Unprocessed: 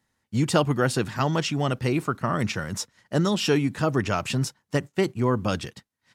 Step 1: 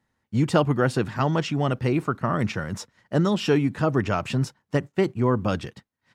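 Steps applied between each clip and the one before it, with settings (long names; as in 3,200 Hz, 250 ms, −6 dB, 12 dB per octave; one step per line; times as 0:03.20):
high-shelf EQ 3,600 Hz −11 dB
level +1.5 dB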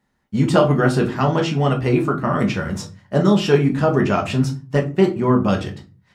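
convolution reverb RT60 0.35 s, pre-delay 5 ms, DRR 1 dB
level +2.5 dB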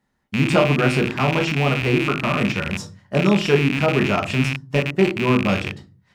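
loose part that buzzes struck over −25 dBFS, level −11 dBFS
level −2 dB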